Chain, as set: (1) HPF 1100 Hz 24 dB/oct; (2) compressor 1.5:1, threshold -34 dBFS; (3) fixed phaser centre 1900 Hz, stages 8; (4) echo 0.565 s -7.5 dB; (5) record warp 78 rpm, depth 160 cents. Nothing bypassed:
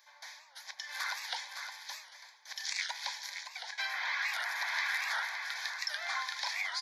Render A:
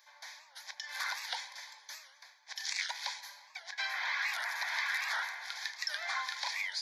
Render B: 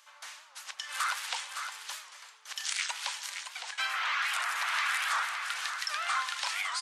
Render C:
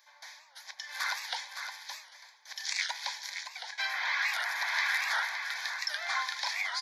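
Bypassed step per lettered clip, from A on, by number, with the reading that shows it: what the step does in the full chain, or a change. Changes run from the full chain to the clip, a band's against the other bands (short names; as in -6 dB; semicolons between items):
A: 4, momentary loudness spread change +2 LU; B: 3, 1 kHz band +4.0 dB; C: 2, momentary loudness spread change +3 LU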